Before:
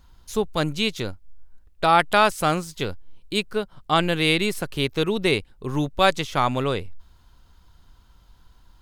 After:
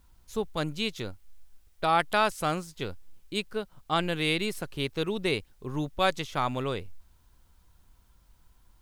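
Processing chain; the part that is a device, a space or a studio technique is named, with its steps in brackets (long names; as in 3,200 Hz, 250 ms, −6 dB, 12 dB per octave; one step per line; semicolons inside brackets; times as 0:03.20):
plain cassette with noise reduction switched in (one half of a high-frequency compander decoder only; tape wow and flutter 28 cents; white noise bed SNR 41 dB)
level −7 dB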